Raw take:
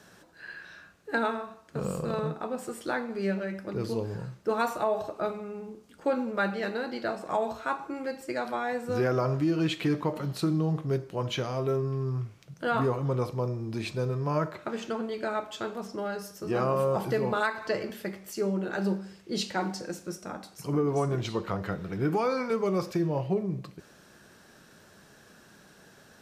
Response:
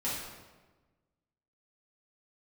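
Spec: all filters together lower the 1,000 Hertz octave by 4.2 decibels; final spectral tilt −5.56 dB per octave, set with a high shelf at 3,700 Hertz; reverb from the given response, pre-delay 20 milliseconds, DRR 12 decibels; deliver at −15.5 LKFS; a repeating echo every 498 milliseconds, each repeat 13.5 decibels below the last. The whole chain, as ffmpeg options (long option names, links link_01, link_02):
-filter_complex "[0:a]equalizer=frequency=1000:width_type=o:gain=-6,highshelf=frequency=3700:gain=4,aecho=1:1:498|996:0.211|0.0444,asplit=2[link_01][link_02];[1:a]atrim=start_sample=2205,adelay=20[link_03];[link_02][link_03]afir=irnorm=-1:irlink=0,volume=-17.5dB[link_04];[link_01][link_04]amix=inputs=2:normalize=0,volume=15.5dB"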